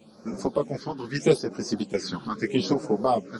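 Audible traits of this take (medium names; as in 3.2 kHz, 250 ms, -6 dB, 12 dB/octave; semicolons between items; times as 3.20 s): phasing stages 6, 0.79 Hz, lowest notch 580–3200 Hz; tremolo saw up 2.2 Hz, depth 55%; a shimmering, thickened sound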